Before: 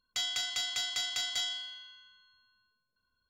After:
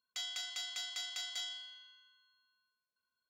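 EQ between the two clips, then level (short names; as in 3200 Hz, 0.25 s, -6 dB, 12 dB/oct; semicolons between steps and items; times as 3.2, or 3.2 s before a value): HPF 470 Hz 6 dB/oct; -7.5 dB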